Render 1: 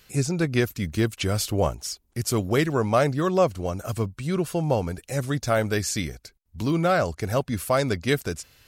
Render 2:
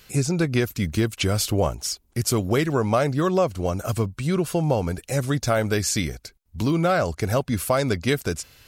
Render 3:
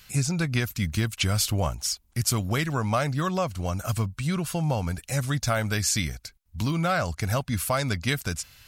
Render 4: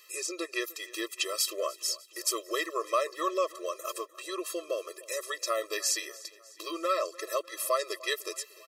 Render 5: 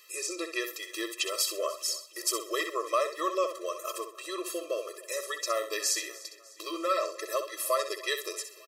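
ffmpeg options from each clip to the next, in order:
-af "bandreject=f=1800:w=30,acompressor=threshold=0.0708:ratio=2.5,volume=1.68"
-af "equalizer=f=400:w=1.1:g=-12"
-af "aecho=1:1:300|600|900|1200:0.0944|0.0529|0.0296|0.0166,afftfilt=real='re*eq(mod(floor(b*sr/1024/340),2),1)':imag='im*eq(mod(floor(b*sr/1024/340),2),1)':win_size=1024:overlap=0.75"
-af "aecho=1:1:64|128|192:0.355|0.0887|0.0222"

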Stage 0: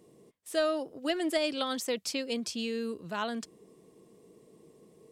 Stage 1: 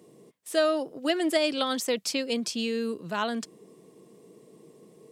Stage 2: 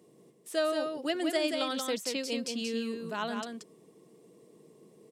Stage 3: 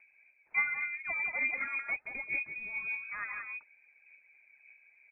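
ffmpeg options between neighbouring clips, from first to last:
-af "highpass=f=110:w=0.5412,highpass=f=110:w=1.3066,volume=1.68"
-af "aecho=1:1:180:0.562,volume=0.531"
-af "aphaser=in_gain=1:out_gain=1:delay=3.5:decay=0.46:speed=1.7:type=sinusoidal,lowpass=f=2300:t=q:w=0.5098,lowpass=f=2300:t=q:w=0.6013,lowpass=f=2300:t=q:w=0.9,lowpass=f=2300:t=q:w=2.563,afreqshift=-2700,volume=0.562"

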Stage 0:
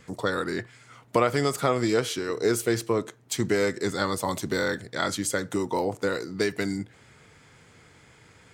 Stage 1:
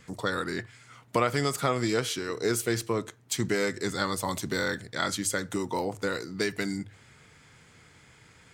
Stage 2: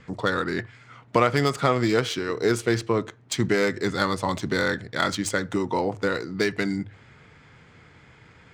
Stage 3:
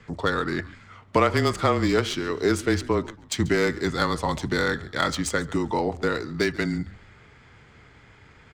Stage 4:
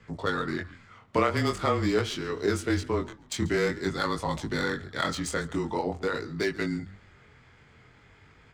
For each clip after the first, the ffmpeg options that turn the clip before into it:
-af "equalizer=f=480:w=0.59:g=-4.5,bandreject=f=50:t=h:w=6,bandreject=f=100:t=h:w=6"
-af "adynamicsmooth=sensitivity=3:basefreq=3600,volume=1.88"
-filter_complex "[0:a]afreqshift=-23,asplit=4[s0][s1][s2][s3];[s1]adelay=139,afreqshift=-74,volume=0.1[s4];[s2]adelay=278,afreqshift=-148,volume=0.0351[s5];[s3]adelay=417,afreqshift=-222,volume=0.0123[s6];[s0][s4][s5][s6]amix=inputs=4:normalize=0"
-af "flanger=delay=18.5:depth=6.3:speed=0.46,volume=0.841"

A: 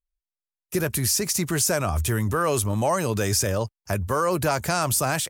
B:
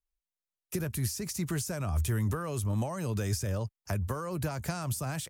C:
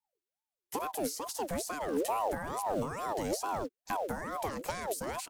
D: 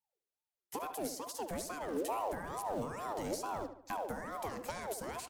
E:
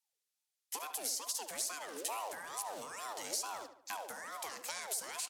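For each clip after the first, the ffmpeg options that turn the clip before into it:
-filter_complex "[0:a]acrossover=split=210[s0][s1];[s1]acompressor=threshold=0.0282:ratio=10[s2];[s0][s2]amix=inputs=2:normalize=0,volume=0.668"
-filter_complex "[0:a]acrossover=split=590|5500[s0][s1][s2];[s0]acrusher=bits=6:mode=log:mix=0:aa=0.000001[s3];[s3][s1][s2]amix=inputs=3:normalize=0,aeval=exprs='val(0)*sin(2*PI*630*n/s+630*0.45/2.3*sin(2*PI*2.3*n/s))':c=same"
-filter_complex "[0:a]asplit=2[s0][s1];[s1]adelay=73,lowpass=f=3100:p=1,volume=0.335,asplit=2[s2][s3];[s3]adelay=73,lowpass=f=3100:p=1,volume=0.45,asplit=2[s4][s5];[s5]adelay=73,lowpass=f=3100:p=1,volume=0.45,asplit=2[s6][s7];[s7]adelay=73,lowpass=f=3100:p=1,volume=0.45,asplit=2[s8][s9];[s9]adelay=73,lowpass=f=3100:p=1,volume=0.45[s10];[s0][s2][s4][s6][s8][s10]amix=inputs=6:normalize=0,volume=0.562"
-af "bandpass=f=6900:t=q:w=0.53:csg=0,volume=2.82"

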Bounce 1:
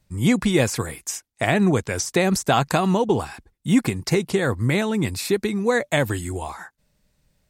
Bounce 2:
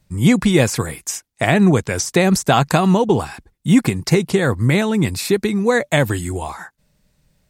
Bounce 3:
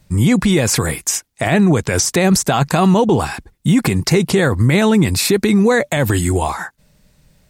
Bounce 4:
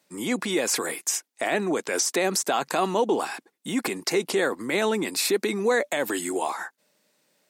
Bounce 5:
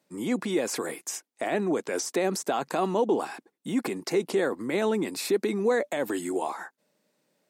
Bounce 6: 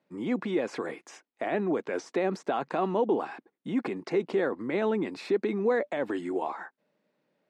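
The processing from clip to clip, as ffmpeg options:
-af "equalizer=f=160:t=o:w=0.61:g=3.5,volume=1.58"
-af "alimiter=level_in=4.22:limit=0.891:release=50:level=0:latency=1,volume=0.596"
-af "highpass=f=280:w=0.5412,highpass=f=280:w=1.3066,volume=0.422"
-af "tiltshelf=f=970:g=4.5,volume=0.631"
-af "lowpass=2800,volume=0.841"

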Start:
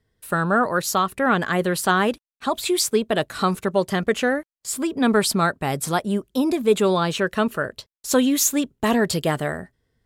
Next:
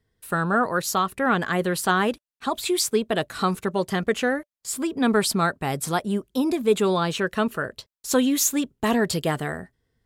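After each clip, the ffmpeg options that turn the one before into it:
-af "bandreject=f=590:w=15,volume=0.794"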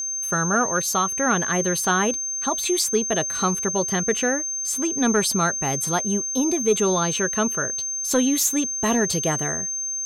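-af "acontrast=65,aeval=exprs='val(0)+0.112*sin(2*PI*6300*n/s)':c=same,volume=0.501"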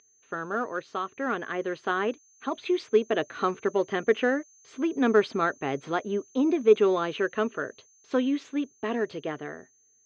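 -af "aeval=exprs='0.376*(cos(1*acos(clip(val(0)/0.376,-1,1)))-cos(1*PI/2))+0.0473*(cos(3*acos(clip(val(0)/0.376,-1,1)))-cos(3*PI/2))':c=same,highpass=170,equalizer=f=180:t=q:w=4:g=-9,equalizer=f=290:t=q:w=4:g=4,equalizer=f=420:t=q:w=4:g=5,equalizer=f=870:t=q:w=4:g=-4,lowpass=f=3100:w=0.5412,lowpass=f=3100:w=1.3066,dynaudnorm=f=230:g=21:m=2.51,volume=0.531"

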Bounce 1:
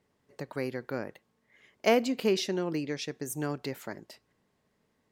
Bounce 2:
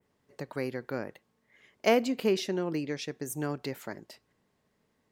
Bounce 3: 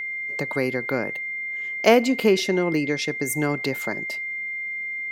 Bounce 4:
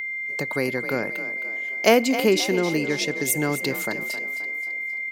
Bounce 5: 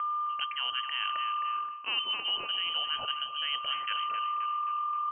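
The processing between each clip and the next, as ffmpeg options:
-af "adynamicequalizer=threshold=0.00398:dfrequency=5000:dqfactor=0.77:tfrequency=5000:tqfactor=0.77:attack=5:release=100:ratio=0.375:range=2.5:mode=cutabove:tftype=bell"
-filter_complex "[0:a]highpass=110,aeval=exprs='val(0)+0.0112*sin(2*PI*2100*n/s)':c=same,asplit=2[s0][s1];[s1]acompressor=threshold=0.0141:ratio=6,volume=0.708[s2];[s0][s2]amix=inputs=2:normalize=0,volume=2.24"
-filter_complex "[0:a]highshelf=f=5200:g=8.5,asplit=2[s0][s1];[s1]asplit=5[s2][s3][s4][s5][s6];[s2]adelay=264,afreqshift=40,volume=0.251[s7];[s3]adelay=528,afreqshift=80,volume=0.123[s8];[s4]adelay=792,afreqshift=120,volume=0.0603[s9];[s5]adelay=1056,afreqshift=160,volume=0.0295[s10];[s6]adelay=1320,afreqshift=200,volume=0.0145[s11];[s7][s8][s9][s10][s11]amix=inputs=5:normalize=0[s12];[s0][s12]amix=inputs=2:normalize=0,volume=0.891"
-af "areverse,acompressor=threshold=0.0398:ratio=16,areverse,lowpass=f=2800:t=q:w=0.5098,lowpass=f=2800:t=q:w=0.6013,lowpass=f=2800:t=q:w=0.9,lowpass=f=2800:t=q:w=2.563,afreqshift=-3300"

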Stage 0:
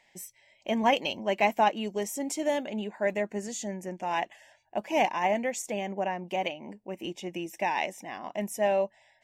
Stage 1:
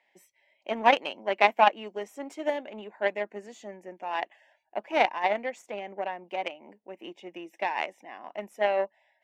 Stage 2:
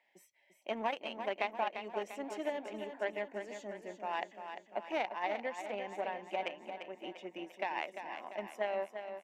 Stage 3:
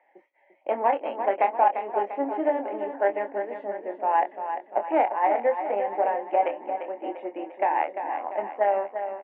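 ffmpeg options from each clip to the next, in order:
-filter_complex "[0:a]aeval=exprs='0.316*(cos(1*acos(clip(val(0)/0.316,-1,1)))-cos(1*PI/2))+0.0631*(cos(3*acos(clip(val(0)/0.316,-1,1)))-cos(3*PI/2))+0.00794*(cos(7*acos(clip(val(0)/0.316,-1,1)))-cos(7*PI/2))+0.002*(cos(8*acos(clip(val(0)/0.316,-1,1)))-cos(8*PI/2))':c=same,acrossover=split=250 3500:gain=0.0794 1 0.158[s0][s1][s2];[s0][s1][s2]amix=inputs=3:normalize=0,volume=2.66"
-filter_complex "[0:a]acompressor=threshold=0.0398:ratio=6,asplit=2[s0][s1];[s1]aecho=0:1:346|692|1038|1384|1730|2076:0.376|0.199|0.106|0.056|0.0297|0.0157[s2];[s0][s2]amix=inputs=2:normalize=0,volume=0.631"
-filter_complex "[0:a]highpass=f=270:w=0.5412,highpass=f=270:w=1.3066,equalizer=f=290:t=q:w=4:g=7,equalizer=f=520:t=q:w=4:g=7,equalizer=f=820:t=q:w=4:g=9,lowpass=f=2000:w=0.5412,lowpass=f=2000:w=1.3066,asplit=2[s0][s1];[s1]adelay=25,volume=0.422[s2];[s0][s2]amix=inputs=2:normalize=0,volume=2.37"

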